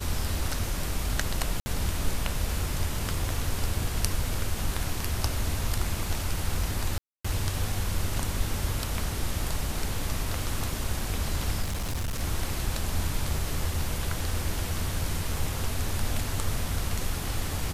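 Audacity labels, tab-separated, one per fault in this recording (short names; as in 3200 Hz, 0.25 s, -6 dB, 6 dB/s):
1.600000	1.660000	gap 60 ms
2.860000	3.330000	clipped -20.5 dBFS
6.980000	7.250000	gap 0.265 s
11.620000	12.210000	clipped -26.5 dBFS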